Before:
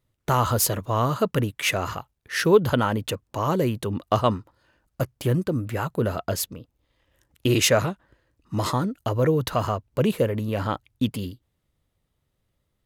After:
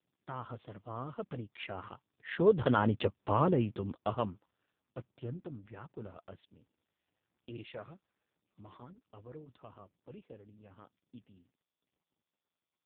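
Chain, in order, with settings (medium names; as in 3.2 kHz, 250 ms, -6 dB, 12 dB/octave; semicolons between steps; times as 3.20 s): Doppler pass-by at 3.12 s, 9 m/s, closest 2.6 m; AMR-NB 5.15 kbps 8 kHz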